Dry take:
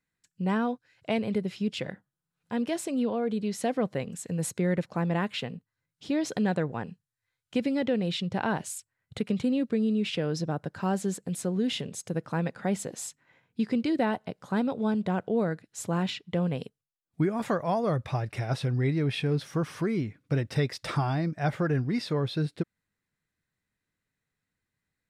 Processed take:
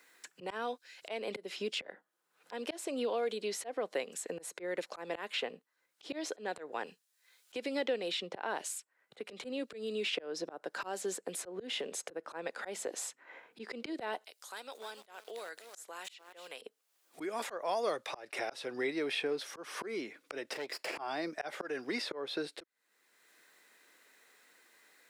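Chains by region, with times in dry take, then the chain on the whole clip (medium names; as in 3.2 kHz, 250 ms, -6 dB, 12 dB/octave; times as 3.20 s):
14.24–16.62 s: differentiator + compression 1.5:1, threshold -58 dBFS + bit-crushed delay 297 ms, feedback 35%, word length 10-bit, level -10 dB
20.53–20.98 s: comb filter that takes the minimum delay 0.4 ms + compression 3:1, threshold -41 dBFS
whole clip: high-pass 360 Hz 24 dB/octave; slow attack 320 ms; three bands compressed up and down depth 70%; trim +2 dB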